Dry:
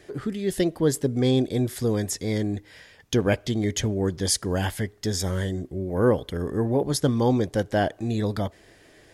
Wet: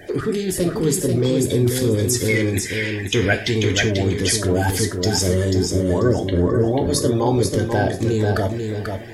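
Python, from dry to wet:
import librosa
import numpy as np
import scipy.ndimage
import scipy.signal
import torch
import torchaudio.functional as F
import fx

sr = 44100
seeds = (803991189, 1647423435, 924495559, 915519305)

p1 = fx.spec_quant(x, sr, step_db=30)
p2 = fx.peak_eq(p1, sr, hz=2200.0, db=13.5, octaves=1.3, at=(2.28, 3.83))
p3 = fx.over_compress(p2, sr, threshold_db=-31.0, ratio=-1.0)
p4 = p2 + (p3 * 10.0 ** (2.0 / 20.0))
p5 = fx.quant_float(p4, sr, bits=8)
p6 = fx.air_absorb(p5, sr, metres=210.0, at=(5.84, 6.55))
p7 = p6 + fx.echo_feedback(p6, sr, ms=489, feedback_pct=21, wet_db=-5.5, dry=0)
y = fx.rev_gated(p7, sr, seeds[0], gate_ms=130, shape='falling', drr_db=6.0)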